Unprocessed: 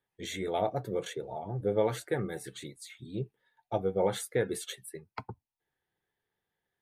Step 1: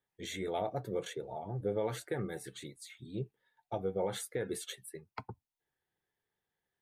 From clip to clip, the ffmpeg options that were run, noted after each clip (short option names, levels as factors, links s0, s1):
-af "alimiter=limit=0.0841:level=0:latency=1:release=74,volume=0.708"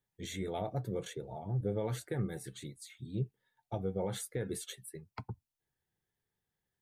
-af "bass=f=250:g=10,treble=f=4000:g=4,volume=0.668"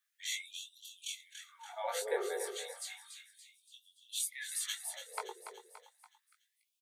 -af "flanger=delay=18.5:depth=4.6:speed=0.4,aecho=1:1:286|572|858|1144|1430|1716:0.335|0.167|0.0837|0.0419|0.0209|0.0105,afftfilt=real='re*gte(b*sr/1024,350*pow(2700/350,0.5+0.5*sin(2*PI*0.32*pts/sr)))':imag='im*gte(b*sr/1024,350*pow(2700/350,0.5+0.5*sin(2*PI*0.32*pts/sr)))':win_size=1024:overlap=0.75,volume=3.16"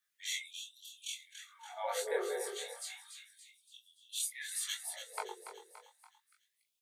-af "flanger=delay=19:depth=7.7:speed=0.6,volume=1.41"